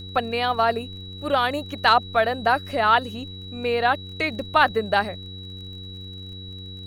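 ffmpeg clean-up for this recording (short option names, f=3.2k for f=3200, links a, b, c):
-af "adeclick=t=4,bandreject=f=94.1:t=h:w=4,bandreject=f=188.2:t=h:w=4,bandreject=f=282.3:t=h:w=4,bandreject=f=376.4:t=h:w=4,bandreject=f=470.5:t=h:w=4,bandreject=f=3.9k:w=30,agate=range=-21dB:threshold=-29dB"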